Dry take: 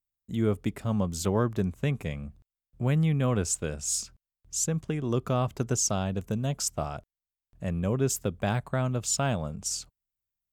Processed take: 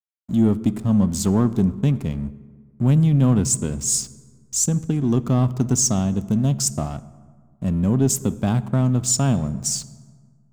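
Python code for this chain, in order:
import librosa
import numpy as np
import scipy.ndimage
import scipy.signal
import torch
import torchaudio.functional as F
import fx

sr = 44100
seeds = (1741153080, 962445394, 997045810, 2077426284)

y = fx.graphic_eq(x, sr, hz=(250, 500, 2000, 8000), db=(8, -7, -11, 3))
y = fx.backlash(y, sr, play_db=-42.0)
y = fx.rev_fdn(y, sr, rt60_s=1.7, lf_ratio=1.2, hf_ratio=0.5, size_ms=44.0, drr_db=15.5)
y = 10.0 ** (-14.0 / 20.0) * np.tanh(y / 10.0 ** (-14.0 / 20.0))
y = y * 10.0 ** (7.0 / 20.0)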